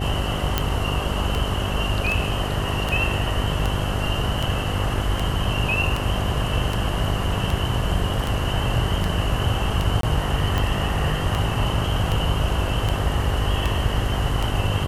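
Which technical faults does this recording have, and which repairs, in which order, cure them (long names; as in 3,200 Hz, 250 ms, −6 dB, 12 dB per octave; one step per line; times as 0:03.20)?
mains buzz 50 Hz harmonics 14 −27 dBFS
scratch tick 78 rpm
0:00.58: click
0:10.01–0:10.03: drop-out 23 ms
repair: click removal
hum removal 50 Hz, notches 14
repair the gap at 0:10.01, 23 ms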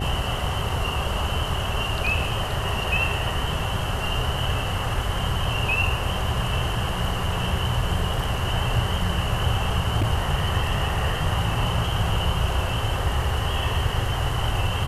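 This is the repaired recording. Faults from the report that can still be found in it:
none of them is left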